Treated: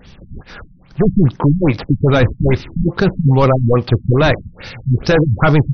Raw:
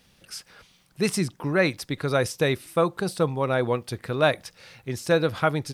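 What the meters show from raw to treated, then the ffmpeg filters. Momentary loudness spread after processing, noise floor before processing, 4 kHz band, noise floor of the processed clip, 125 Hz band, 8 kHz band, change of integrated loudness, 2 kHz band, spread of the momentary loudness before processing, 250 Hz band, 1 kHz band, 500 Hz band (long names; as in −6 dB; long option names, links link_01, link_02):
7 LU, −61 dBFS, +4.5 dB, −44 dBFS, +17.0 dB, can't be measured, +10.5 dB, +6.0 dB, 16 LU, +13.0 dB, +7.5 dB, +7.5 dB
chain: -filter_complex "[0:a]apsyclip=24dB,asplit=2[link_01][link_02];[link_02]acrusher=samples=41:mix=1:aa=0.000001:lfo=1:lforange=65.6:lforate=0.49,volume=-10dB[link_03];[link_01][link_03]amix=inputs=2:normalize=0,lowshelf=frequency=81:gain=10,afftfilt=real='re*lt(b*sr/1024,220*pow(6400/220,0.5+0.5*sin(2*PI*2.4*pts/sr)))':imag='im*lt(b*sr/1024,220*pow(6400/220,0.5+0.5*sin(2*PI*2.4*pts/sr)))':win_size=1024:overlap=0.75,volume=-8.5dB"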